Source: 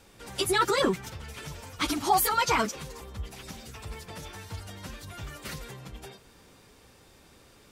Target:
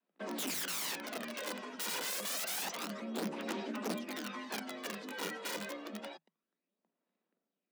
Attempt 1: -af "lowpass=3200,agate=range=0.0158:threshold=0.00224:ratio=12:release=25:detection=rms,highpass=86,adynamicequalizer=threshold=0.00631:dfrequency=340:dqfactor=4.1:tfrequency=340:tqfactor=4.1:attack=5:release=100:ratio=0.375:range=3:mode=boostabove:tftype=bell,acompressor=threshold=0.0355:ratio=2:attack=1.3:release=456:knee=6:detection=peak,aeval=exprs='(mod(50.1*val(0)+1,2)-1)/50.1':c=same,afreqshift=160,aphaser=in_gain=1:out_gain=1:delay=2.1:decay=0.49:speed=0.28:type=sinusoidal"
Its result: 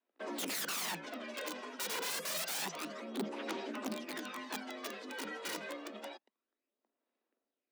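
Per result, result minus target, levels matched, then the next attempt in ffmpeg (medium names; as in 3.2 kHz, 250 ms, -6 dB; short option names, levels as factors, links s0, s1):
compression: peak gain reduction +4 dB; 125 Hz band -3.0 dB
-af "lowpass=3200,agate=range=0.0158:threshold=0.00224:ratio=12:release=25:detection=rms,highpass=86,adynamicequalizer=threshold=0.00631:dfrequency=340:dqfactor=4.1:tfrequency=340:tqfactor=4.1:attack=5:release=100:ratio=0.375:range=3:mode=boostabove:tftype=bell,acompressor=threshold=0.0891:ratio=2:attack=1.3:release=456:knee=6:detection=peak,aeval=exprs='(mod(50.1*val(0)+1,2)-1)/50.1':c=same,afreqshift=160,aphaser=in_gain=1:out_gain=1:delay=2.1:decay=0.49:speed=0.28:type=sinusoidal"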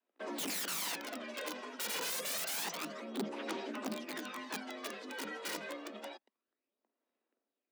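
125 Hz band -4.0 dB
-af "lowpass=3200,agate=range=0.0158:threshold=0.00224:ratio=12:release=25:detection=rms,adynamicequalizer=threshold=0.00631:dfrequency=340:dqfactor=4.1:tfrequency=340:tqfactor=4.1:attack=5:release=100:ratio=0.375:range=3:mode=boostabove:tftype=bell,acompressor=threshold=0.0891:ratio=2:attack=1.3:release=456:knee=6:detection=peak,aeval=exprs='(mod(50.1*val(0)+1,2)-1)/50.1':c=same,afreqshift=160,aphaser=in_gain=1:out_gain=1:delay=2.1:decay=0.49:speed=0.28:type=sinusoidal"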